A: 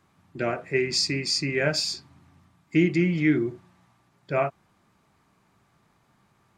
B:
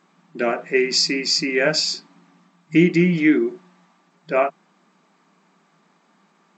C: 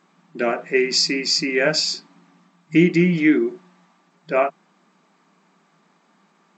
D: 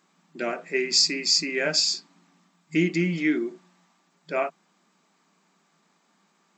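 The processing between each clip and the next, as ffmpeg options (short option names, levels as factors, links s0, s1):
-af "afftfilt=real='re*between(b*sr/4096,160,8100)':imag='im*between(b*sr/4096,160,8100)':win_size=4096:overlap=0.75,volume=2"
-af anull
-af "highshelf=f=4100:g=11.5,volume=0.398"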